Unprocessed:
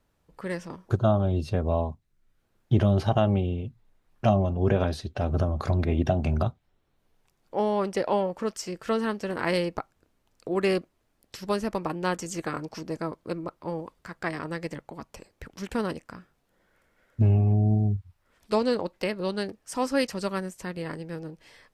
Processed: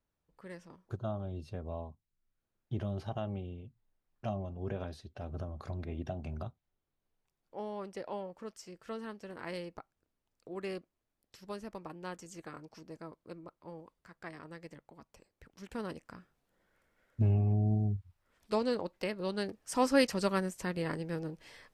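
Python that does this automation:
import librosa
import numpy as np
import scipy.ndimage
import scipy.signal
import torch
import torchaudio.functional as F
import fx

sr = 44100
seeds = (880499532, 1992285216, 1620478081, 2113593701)

y = fx.gain(x, sr, db=fx.line((15.47, -15.0), (16.13, -7.0), (19.21, -7.0), (19.8, -1.0)))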